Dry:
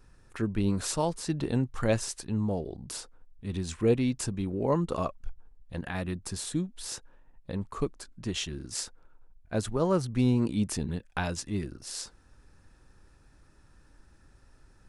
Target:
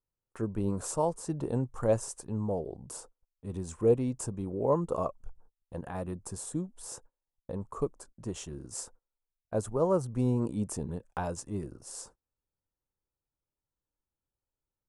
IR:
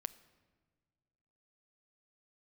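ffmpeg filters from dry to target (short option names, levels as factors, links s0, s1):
-af "equalizer=f=125:t=o:w=1:g=4,equalizer=f=500:t=o:w=1:g=8,equalizer=f=1000:t=o:w=1:g=7,equalizer=f=2000:t=o:w=1:g=-7,equalizer=f=4000:t=o:w=1:g=-10,equalizer=f=8000:t=o:w=1:g=7,agate=range=0.0316:threshold=0.00562:ratio=16:detection=peak,volume=0.447"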